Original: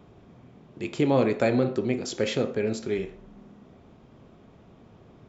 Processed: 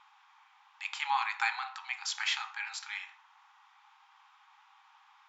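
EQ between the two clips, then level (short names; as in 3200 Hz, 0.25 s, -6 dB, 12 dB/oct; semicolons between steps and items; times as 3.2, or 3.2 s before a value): brick-wall FIR high-pass 770 Hz; air absorption 59 m; +3.5 dB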